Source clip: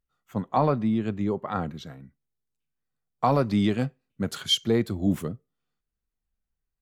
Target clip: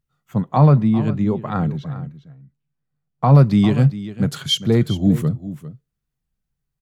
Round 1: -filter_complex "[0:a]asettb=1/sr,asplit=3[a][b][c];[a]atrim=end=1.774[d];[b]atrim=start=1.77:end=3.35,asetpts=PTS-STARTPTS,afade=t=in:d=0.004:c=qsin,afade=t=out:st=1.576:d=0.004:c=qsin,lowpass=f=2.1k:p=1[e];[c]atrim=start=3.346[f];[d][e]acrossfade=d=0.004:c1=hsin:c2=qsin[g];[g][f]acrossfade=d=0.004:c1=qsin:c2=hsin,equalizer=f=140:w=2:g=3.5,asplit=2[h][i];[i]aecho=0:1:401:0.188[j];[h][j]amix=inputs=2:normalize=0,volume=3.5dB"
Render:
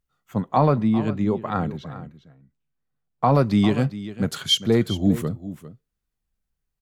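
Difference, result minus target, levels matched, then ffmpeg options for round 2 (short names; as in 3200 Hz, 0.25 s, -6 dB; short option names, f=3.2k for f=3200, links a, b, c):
125 Hz band -4.0 dB
-filter_complex "[0:a]asettb=1/sr,asplit=3[a][b][c];[a]atrim=end=1.774[d];[b]atrim=start=1.77:end=3.35,asetpts=PTS-STARTPTS,afade=t=in:d=0.004:c=qsin,afade=t=out:st=1.576:d=0.004:c=qsin,lowpass=f=2.1k:p=1[e];[c]atrim=start=3.346[f];[d][e]acrossfade=d=0.004:c1=hsin:c2=qsin[g];[g][f]acrossfade=d=0.004:c1=qsin:c2=hsin,equalizer=f=140:w=2:g=14.5,asplit=2[h][i];[i]aecho=0:1:401:0.188[j];[h][j]amix=inputs=2:normalize=0,volume=3.5dB"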